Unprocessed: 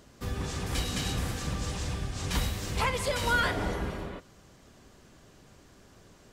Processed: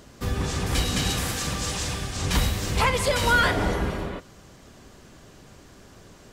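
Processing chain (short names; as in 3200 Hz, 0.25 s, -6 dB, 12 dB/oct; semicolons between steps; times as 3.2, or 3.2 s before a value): 1.1–2.17 tilt +1.5 dB/oct; in parallel at -5 dB: hard clip -23 dBFS, distortion -17 dB; on the sum: gain +3 dB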